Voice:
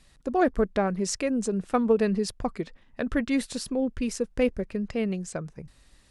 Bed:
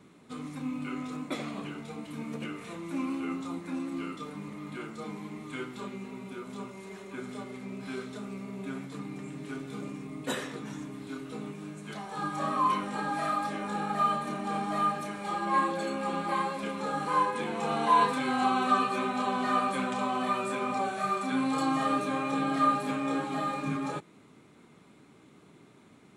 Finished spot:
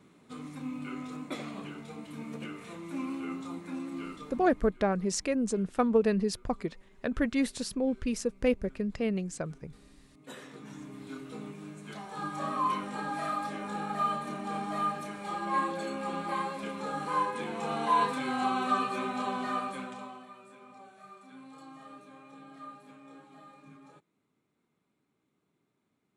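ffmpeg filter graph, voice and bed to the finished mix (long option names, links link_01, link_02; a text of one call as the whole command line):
ffmpeg -i stem1.wav -i stem2.wav -filter_complex "[0:a]adelay=4050,volume=-2.5dB[link_01];[1:a]volume=15dB,afade=type=out:start_time=4.06:duration=0.71:silence=0.125893,afade=type=in:start_time=10.14:duration=0.88:silence=0.125893,afade=type=out:start_time=19.27:duration=1:silence=0.11885[link_02];[link_01][link_02]amix=inputs=2:normalize=0" out.wav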